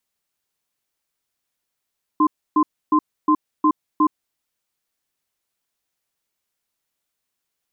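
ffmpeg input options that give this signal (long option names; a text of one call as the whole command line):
ffmpeg -f lavfi -i "aevalsrc='0.178*(sin(2*PI*306*t)+sin(2*PI*1040*t))*clip(min(mod(t,0.36),0.07-mod(t,0.36))/0.005,0,1)':duration=1.98:sample_rate=44100" out.wav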